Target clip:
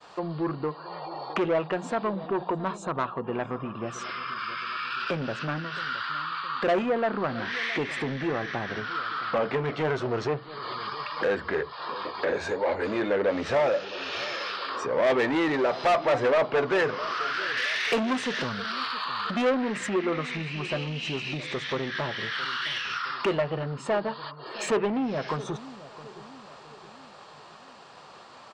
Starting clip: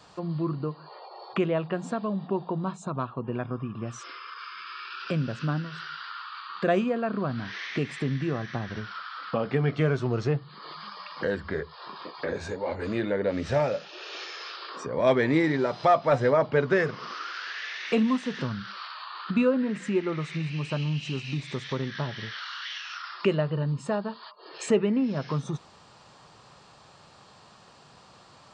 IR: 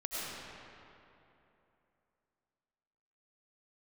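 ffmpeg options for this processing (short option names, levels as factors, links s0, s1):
-filter_complex "[0:a]asoftclip=type=tanh:threshold=0.0501,asettb=1/sr,asplit=3[s0][s1][s2];[s0]atrim=end=17.574[s3];[s1]atrim=start=17.57:end=19.87,asetpts=PTS-STARTPTS,afade=t=in:d=0.004:c=qsin,afade=t=out:st=2.296:d=0.004:c=qsin,aemphasis=mode=production:type=50kf[s4];[s2]atrim=start=19.866[s5];[s3][s4]acrossfade=d=0.004:c1=hsin:c2=qsin[s6];[s6][s5]acrossfade=d=0.004:c1=qsin:c2=hsin,agate=range=0.0224:threshold=0.00282:ratio=3:detection=peak,bass=f=250:g=-13,treble=f=4000:g=-7,asplit=2[s7][s8];[s8]adelay=667,lowpass=f=1200:p=1,volume=0.158,asplit=2[s9][s10];[s10]adelay=667,lowpass=f=1200:p=1,volume=0.53,asplit=2[s11][s12];[s12]adelay=667,lowpass=f=1200:p=1,volume=0.53,asplit=2[s13][s14];[s14]adelay=667,lowpass=f=1200:p=1,volume=0.53,asplit=2[s15][s16];[s16]adelay=667,lowpass=f=1200:p=1,volume=0.53[s17];[s7][s9][s11][s13][s15][s17]amix=inputs=6:normalize=0,volume=2.51"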